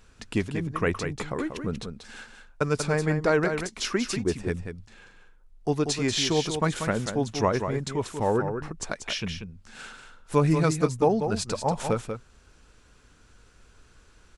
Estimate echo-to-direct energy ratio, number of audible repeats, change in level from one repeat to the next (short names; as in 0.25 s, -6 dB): -7.5 dB, 1, no steady repeat